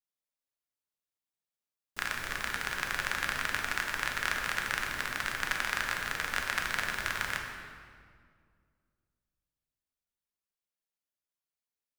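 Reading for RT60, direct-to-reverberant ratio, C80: 2.1 s, 1.0 dB, 5.0 dB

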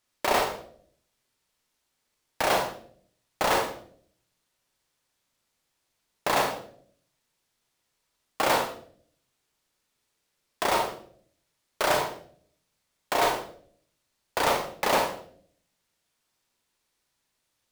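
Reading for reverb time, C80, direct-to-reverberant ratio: 0.55 s, 11.5 dB, 3.5 dB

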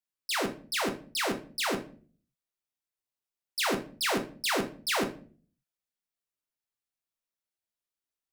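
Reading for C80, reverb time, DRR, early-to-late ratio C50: 17.5 dB, 0.45 s, 4.0 dB, 13.0 dB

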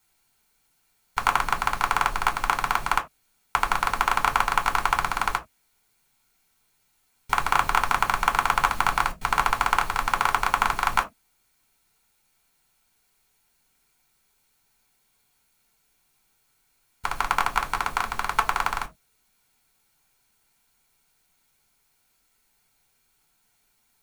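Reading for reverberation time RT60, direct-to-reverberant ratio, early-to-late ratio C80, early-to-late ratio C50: no single decay rate, 4.5 dB, 28.0 dB, 19.0 dB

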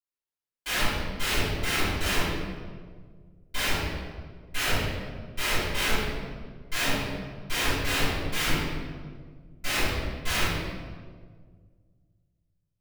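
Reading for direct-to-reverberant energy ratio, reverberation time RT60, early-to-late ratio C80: -16.0 dB, 1.7 s, 0.5 dB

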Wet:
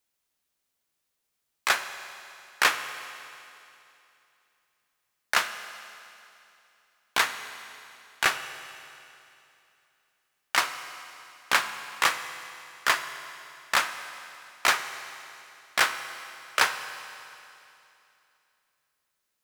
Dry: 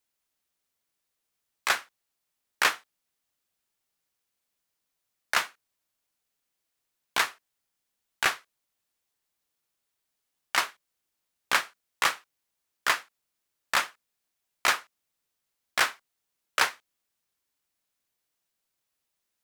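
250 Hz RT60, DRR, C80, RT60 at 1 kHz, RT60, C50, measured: 2.8 s, 8.5 dB, 10.5 dB, 2.8 s, 2.8 s, 10.0 dB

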